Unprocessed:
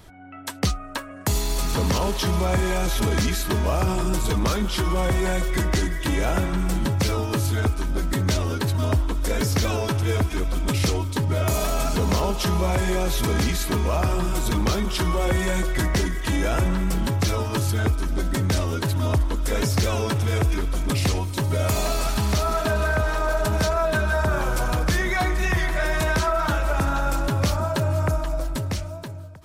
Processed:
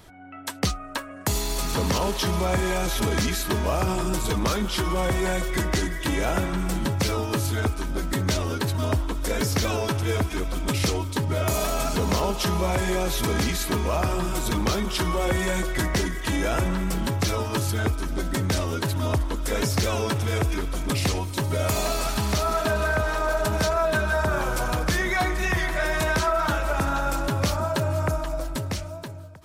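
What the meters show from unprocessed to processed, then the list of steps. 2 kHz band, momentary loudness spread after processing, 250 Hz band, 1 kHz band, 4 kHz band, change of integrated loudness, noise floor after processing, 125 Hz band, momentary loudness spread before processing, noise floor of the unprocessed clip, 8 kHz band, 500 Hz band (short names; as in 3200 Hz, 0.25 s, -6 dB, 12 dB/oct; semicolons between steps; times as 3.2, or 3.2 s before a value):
0.0 dB, 4 LU, -1.5 dB, 0.0 dB, 0.0 dB, -1.5 dB, -36 dBFS, -3.5 dB, 3 LU, -34 dBFS, 0.0 dB, -0.5 dB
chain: low shelf 140 Hz -5 dB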